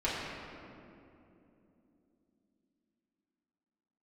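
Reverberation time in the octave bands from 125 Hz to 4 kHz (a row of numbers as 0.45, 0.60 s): 3.7, 4.8, 3.4, 2.4, 2.0, 1.5 s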